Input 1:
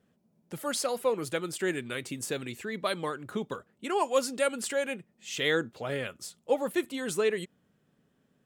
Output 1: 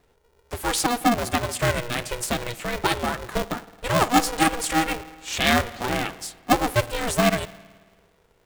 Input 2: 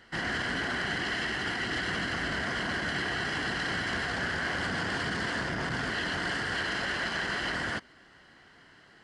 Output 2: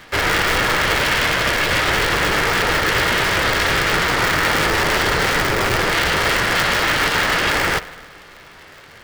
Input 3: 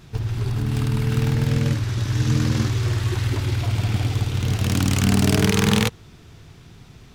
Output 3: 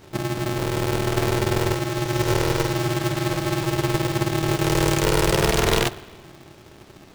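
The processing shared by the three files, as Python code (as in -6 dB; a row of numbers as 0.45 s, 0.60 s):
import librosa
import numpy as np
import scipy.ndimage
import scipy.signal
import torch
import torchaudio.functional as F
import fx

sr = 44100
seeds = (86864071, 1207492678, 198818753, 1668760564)

y = fx.rev_spring(x, sr, rt60_s=1.5, pass_ms=(54,), chirp_ms=20, drr_db=16.0)
y = y * np.sign(np.sin(2.0 * np.pi * 240.0 * np.arange(len(y)) / sr))
y = librosa.util.normalize(y) * 10.0 ** (-6 / 20.0)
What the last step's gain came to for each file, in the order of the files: +7.5 dB, +14.0 dB, -1.5 dB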